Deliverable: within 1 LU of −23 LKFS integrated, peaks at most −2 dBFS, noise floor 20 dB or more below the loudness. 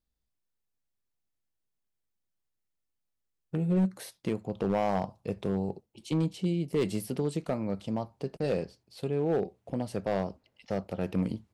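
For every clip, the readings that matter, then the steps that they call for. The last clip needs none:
share of clipped samples 0.8%; peaks flattened at −21.0 dBFS; integrated loudness −32.0 LKFS; sample peak −21.0 dBFS; target loudness −23.0 LKFS
→ clipped peaks rebuilt −21 dBFS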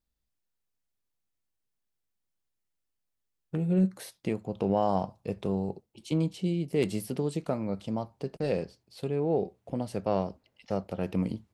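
share of clipped samples 0.0%; integrated loudness −31.5 LKFS; sample peak −14.0 dBFS; target loudness −23.0 LKFS
→ level +8.5 dB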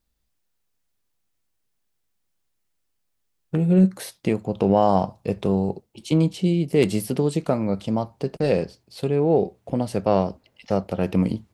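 integrated loudness −23.0 LKFS; sample peak −5.5 dBFS; background noise floor −73 dBFS

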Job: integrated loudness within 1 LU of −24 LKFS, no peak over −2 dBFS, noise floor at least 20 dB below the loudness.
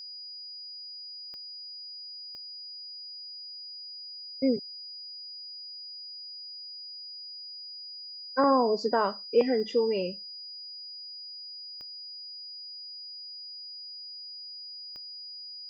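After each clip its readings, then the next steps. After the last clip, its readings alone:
number of clicks 5; interfering tone 4,900 Hz; level of the tone −40 dBFS; integrated loudness −33.5 LKFS; sample peak −12.0 dBFS; target loudness −24.0 LKFS
→ click removal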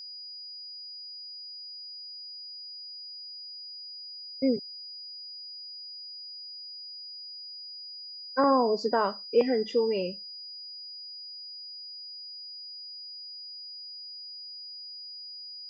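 number of clicks 0; interfering tone 4,900 Hz; level of the tone −40 dBFS
→ notch filter 4,900 Hz, Q 30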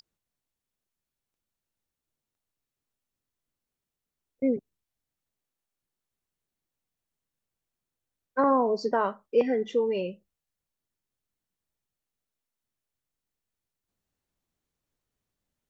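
interfering tone none found; integrated loudness −27.0 LKFS; sample peak −12.5 dBFS; target loudness −24.0 LKFS
→ level +3 dB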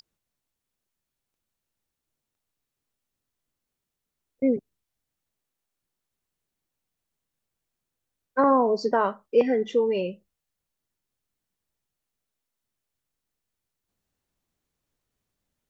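integrated loudness −24.0 LKFS; sample peak −9.5 dBFS; background noise floor −85 dBFS

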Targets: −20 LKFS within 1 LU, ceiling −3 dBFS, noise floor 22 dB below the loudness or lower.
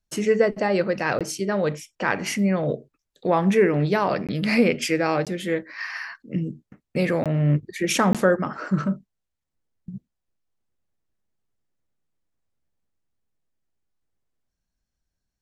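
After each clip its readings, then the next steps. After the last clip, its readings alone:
number of dropouts 5; longest dropout 17 ms; integrated loudness −23.5 LKFS; sample peak −5.5 dBFS; target loudness −20.0 LKFS
→ repair the gap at 0:01.19/0:04.27/0:05.25/0:07.24/0:08.13, 17 ms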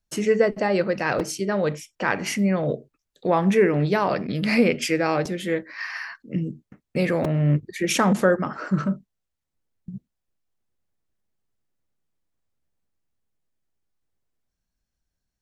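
number of dropouts 0; integrated loudness −23.5 LKFS; sample peak −5.5 dBFS; target loudness −20.0 LKFS
→ level +3.5 dB
brickwall limiter −3 dBFS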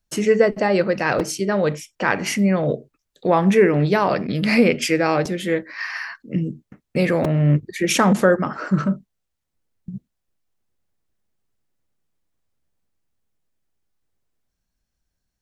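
integrated loudness −20.0 LKFS; sample peak −3.0 dBFS; background noise floor −78 dBFS

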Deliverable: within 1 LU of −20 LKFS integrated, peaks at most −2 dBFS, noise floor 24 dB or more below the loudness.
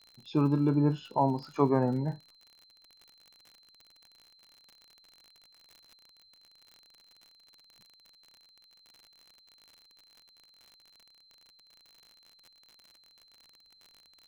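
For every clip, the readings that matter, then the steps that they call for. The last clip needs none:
crackle rate 52 per second; interfering tone 4,100 Hz; level of the tone −59 dBFS; integrated loudness −28.5 LKFS; sample peak −12.0 dBFS; target loudness −20.0 LKFS
→ click removal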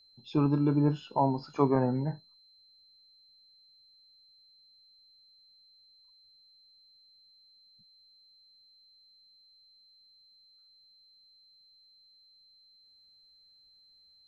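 crackle rate 0 per second; interfering tone 4,100 Hz; level of the tone −59 dBFS
→ notch filter 4,100 Hz, Q 30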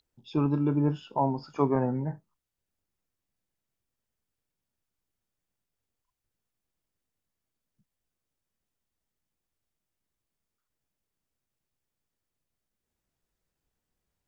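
interfering tone none found; integrated loudness −28.5 LKFS; sample peak −12.0 dBFS; target loudness −20.0 LKFS
→ level +8.5 dB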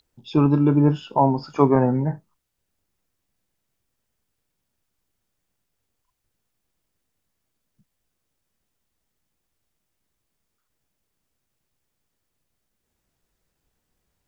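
integrated loudness −20.0 LKFS; sample peak −3.5 dBFS; background noise floor −78 dBFS

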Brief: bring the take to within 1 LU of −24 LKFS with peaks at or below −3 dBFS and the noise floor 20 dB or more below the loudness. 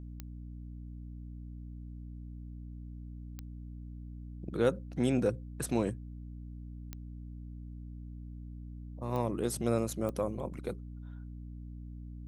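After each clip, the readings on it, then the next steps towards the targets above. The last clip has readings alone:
number of clicks 5; mains hum 60 Hz; hum harmonics up to 300 Hz; level of the hum −42 dBFS; integrated loudness −38.0 LKFS; sample peak −15.5 dBFS; target loudness −24.0 LKFS
→ click removal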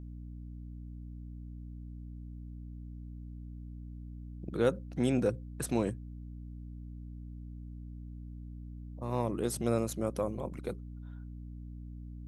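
number of clicks 0; mains hum 60 Hz; hum harmonics up to 300 Hz; level of the hum −42 dBFS
→ hum removal 60 Hz, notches 5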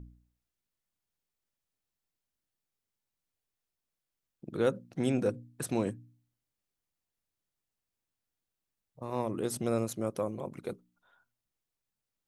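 mains hum none found; integrated loudness −34.0 LKFS; sample peak −15.5 dBFS; target loudness −24.0 LKFS
→ level +10 dB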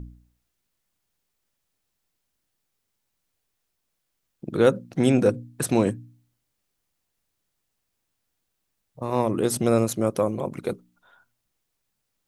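integrated loudness −24.0 LKFS; sample peak −5.5 dBFS; background noise floor −78 dBFS

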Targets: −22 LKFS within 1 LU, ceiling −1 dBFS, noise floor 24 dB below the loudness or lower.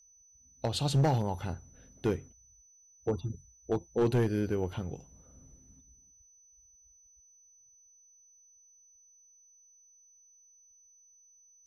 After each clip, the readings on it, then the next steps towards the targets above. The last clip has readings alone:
share of clipped samples 0.4%; peaks flattened at −21.0 dBFS; interfering tone 6,000 Hz; level of the tone −59 dBFS; integrated loudness −32.5 LKFS; sample peak −21.0 dBFS; target loudness −22.0 LKFS
→ clipped peaks rebuilt −21 dBFS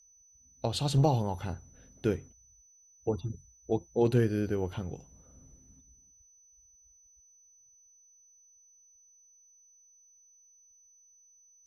share of clipped samples 0.0%; interfering tone 6,000 Hz; level of the tone −59 dBFS
→ notch filter 6,000 Hz, Q 30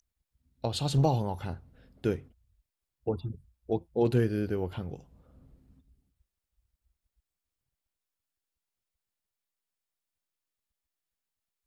interfering tone none found; integrated loudness −31.0 LKFS; sample peak −13.0 dBFS; target loudness −22.0 LKFS
→ level +9 dB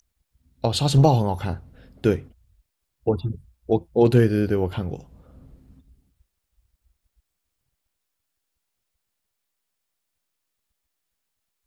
integrated loudness −22.0 LKFS; sample peak −4.0 dBFS; background noise floor −79 dBFS

